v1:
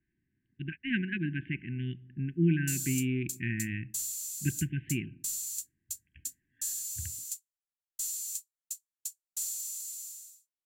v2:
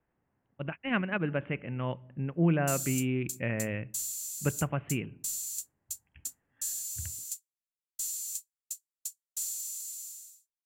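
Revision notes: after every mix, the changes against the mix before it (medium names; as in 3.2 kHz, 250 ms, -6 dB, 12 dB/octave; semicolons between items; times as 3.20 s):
speech: remove brick-wall FIR band-stop 390–1500 Hz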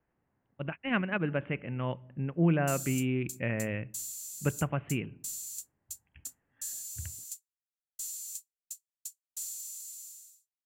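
background -4.0 dB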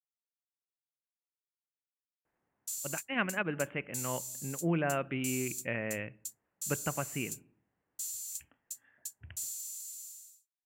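speech: entry +2.25 s; master: add bass shelf 220 Hz -11 dB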